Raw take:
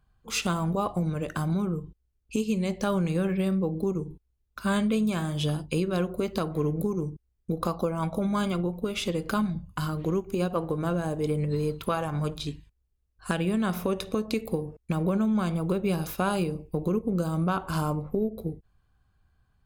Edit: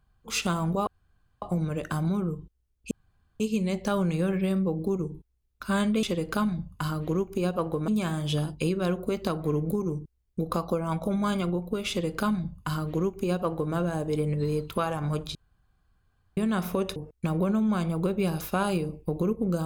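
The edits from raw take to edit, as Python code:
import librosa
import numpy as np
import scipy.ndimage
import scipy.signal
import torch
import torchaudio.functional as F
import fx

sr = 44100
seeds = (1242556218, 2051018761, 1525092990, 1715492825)

y = fx.edit(x, sr, fx.insert_room_tone(at_s=0.87, length_s=0.55),
    fx.insert_room_tone(at_s=2.36, length_s=0.49),
    fx.duplicate(start_s=9.0, length_s=1.85, to_s=4.99),
    fx.room_tone_fill(start_s=12.46, length_s=1.02),
    fx.cut(start_s=14.07, length_s=0.55), tone=tone)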